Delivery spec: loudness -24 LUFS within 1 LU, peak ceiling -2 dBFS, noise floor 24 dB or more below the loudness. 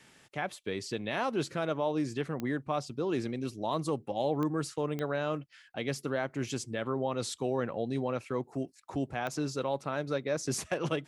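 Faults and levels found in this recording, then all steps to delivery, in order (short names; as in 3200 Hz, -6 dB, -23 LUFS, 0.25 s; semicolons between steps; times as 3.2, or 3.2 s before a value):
clicks 4; loudness -34.0 LUFS; peak -17.5 dBFS; loudness target -24.0 LUFS
-> de-click; gain +10 dB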